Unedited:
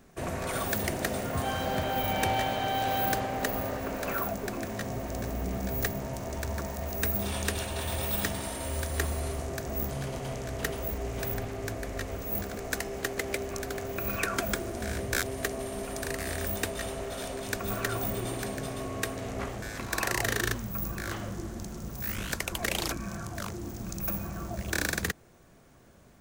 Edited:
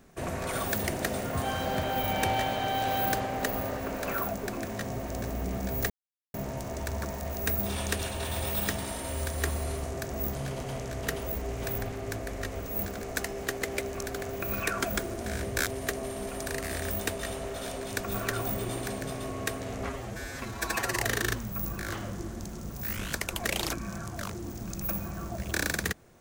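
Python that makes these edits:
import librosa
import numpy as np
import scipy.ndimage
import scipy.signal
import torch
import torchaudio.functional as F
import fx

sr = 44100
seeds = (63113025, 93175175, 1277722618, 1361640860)

y = fx.edit(x, sr, fx.insert_silence(at_s=5.9, length_s=0.44),
    fx.stretch_span(start_s=19.42, length_s=0.74, factor=1.5), tone=tone)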